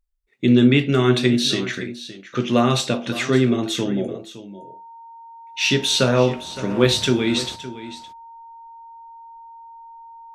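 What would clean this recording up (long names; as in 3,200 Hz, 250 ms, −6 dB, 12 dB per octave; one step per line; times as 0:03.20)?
notch filter 920 Hz, Q 30
echo removal 564 ms −15 dB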